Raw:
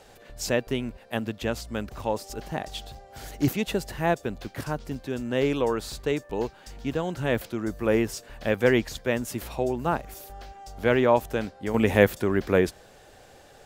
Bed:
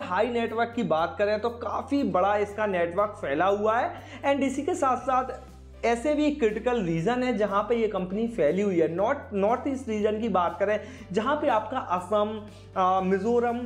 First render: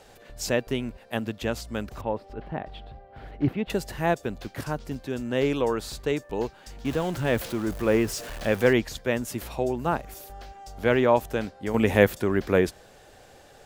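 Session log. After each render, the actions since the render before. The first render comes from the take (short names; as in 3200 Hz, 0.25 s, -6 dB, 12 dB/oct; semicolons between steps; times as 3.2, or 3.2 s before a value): 2.01–3.7 air absorption 460 m; 6.85–8.73 zero-crossing step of -34.5 dBFS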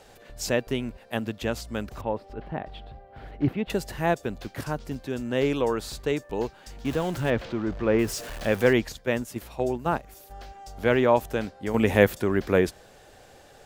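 7.3–7.99 air absorption 180 m; 8.92–10.31 gate -31 dBFS, range -6 dB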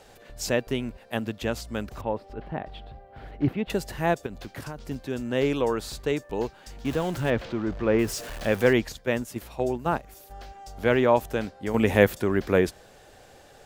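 4.26–4.78 compressor 5:1, threshold -32 dBFS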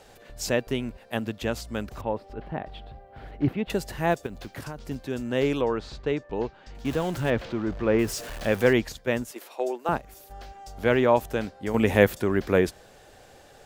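4.11–4.59 block floating point 7-bit; 5.61–6.75 air absorption 160 m; 9.31–9.89 HPF 350 Hz 24 dB/oct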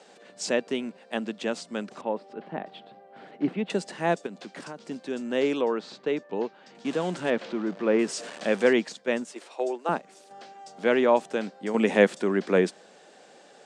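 Chebyshev band-pass 180–8700 Hz, order 4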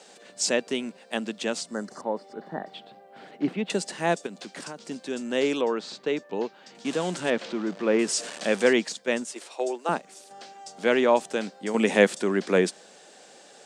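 1.74–2.71 spectral repair 2000–4100 Hz before; high shelf 4200 Hz +11 dB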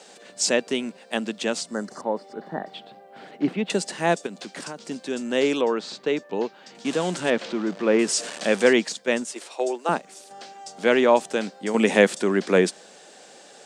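gain +3 dB; limiter -3 dBFS, peak gain reduction 2 dB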